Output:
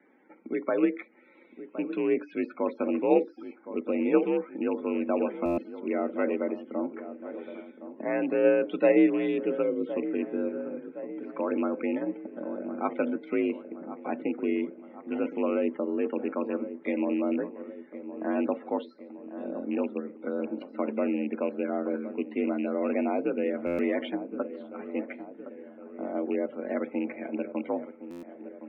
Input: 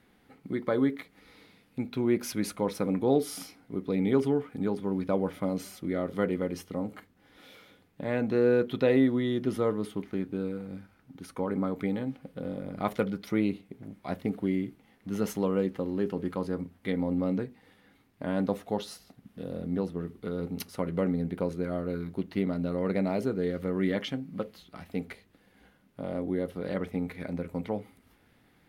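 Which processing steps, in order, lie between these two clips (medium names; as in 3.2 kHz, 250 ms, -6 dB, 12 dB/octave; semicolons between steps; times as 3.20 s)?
rattle on loud lows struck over -28 dBFS, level -31 dBFS; time-frequency box 9.62–9.86 s, 530–2000 Hz -16 dB; in parallel at +2 dB: level held to a coarse grid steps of 11 dB; on the sum: loudest bins only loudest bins 64; on a send: feedback echo behind a low-pass 1065 ms, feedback 56%, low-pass 1.3 kHz, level -12.5 dB; on the sum: mistuned SSB +53 Hz 160–2900 Hz; buffer glitch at 5.45/23.66/28.10 s, samples 512, times 10; trim -3.5 dB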